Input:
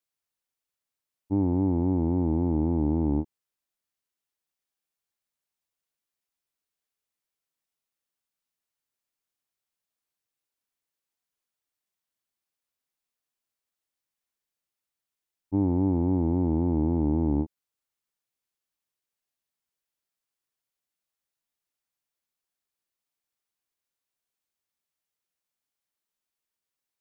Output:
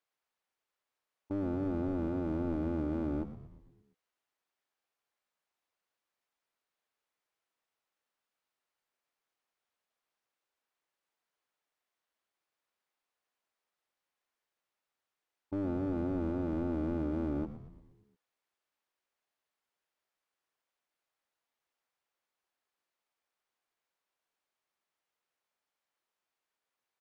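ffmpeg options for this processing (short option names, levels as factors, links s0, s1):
-filter_complex "[0:a]equalizer=f=150:t=o:w=2.2:g=-4,asplit=2[s0][s1];[s1]highpass=f=720:p=1,volume=6.31,asoftclip=type=tanh:threshold=0.133[s2];[s0][s2]amix=inputs=2:normalize=0,lowpass=f=1000:p=1,volume=0.501,alimiter=level_in=1.12:limit=0.0631:level=0:latency=1:release=17,volume=0.891,aeval=exprs='clip(val(0),-1,0.0168)':c=same,asplit=7[s3][s4][s5][s6][s7][s8][s9];[s4]adelay=116,afreqshift=-83,volume=0.251[s10];[s5]adelay=232,afreqshift=-166,volume=0.138[s11];[s6]adelay=348,afreqshift=-249,volume=0.0759[s12];[s7]adelay=464,afreqshift=-332,volume=0.0417[s13];[s8]adelay=580,afreqshift=-415,volume=0.0229[s14];[s9]adelay=696,afreqshift=-498,volume=0.0126[s15];[s3][s10][s11][s12][s13][s14][s15]amix=inputs=7:normalize=0"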